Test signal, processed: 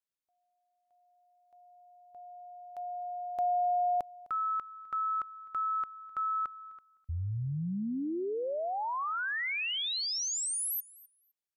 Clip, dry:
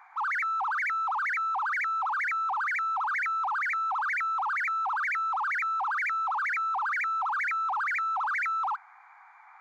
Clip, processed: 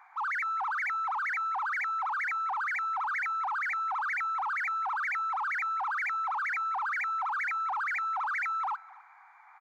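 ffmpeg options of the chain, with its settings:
ffmpeg -i in.wav -af "aecho=1:1:256|512:0.0841|0.0126,volume=-2.5dB" out.wav

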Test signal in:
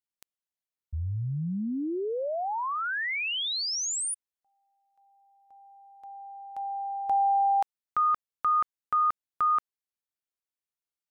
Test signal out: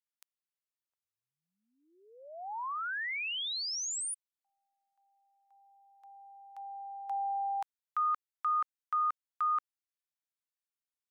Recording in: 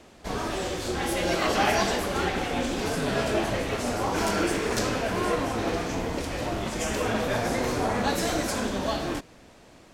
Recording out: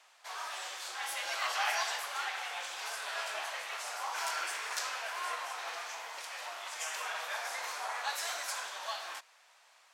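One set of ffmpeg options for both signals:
ffmpeg -i in.wav -af "highpass=frequency=860:width=0.5412,highpass=frequency=860:width=1.3066,volume=-5.5dB" out.wav

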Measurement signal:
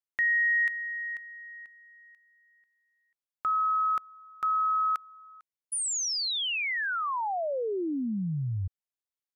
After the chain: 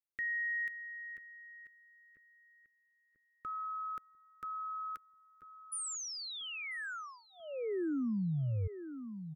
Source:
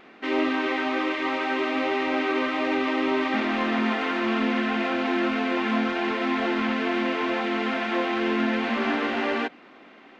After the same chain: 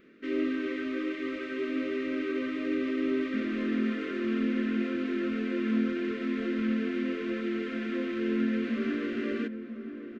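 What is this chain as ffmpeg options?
ffmpeg -i in.wav -filter_complex "[0:a]asuperstop=centerf=830:order=4:qfactor=0.88,equalizer=frequency=3800:width=0.37:gain=-10,asplit=2[link_01][link_02];[link_02]adelay=990,lowpass=frequency=1100:poles=1,volume=-10dB,asplit=2[link_03][link_04];[link_04]adelay=990,lowpass=frequency=1100:poles=1,volume=0.55,asplit=2[link_05][link_06];[link_06]adelay=990,lowpass=frequency=1100:poles=1,volume=0.55,asplit=2[link_07][link_08];[link_08]adelay=990,lowpass=frequency=1100:poles=1,volume=0.55,asplit=2[link_09][link_10];[link_10]adelay=990,lowpass=frequency=1100:poles=1,volume=0.55,asplit=2[link_11][link_12];[link_12]adelay=990,lowpass=frequency=1100:poles=1,volume=0.55[link_13];[link_01][link_03][link_05][link_07][link_09][link_11][link_13]amix=inputs=7:normalize=0,volume=-3dB" out.wav

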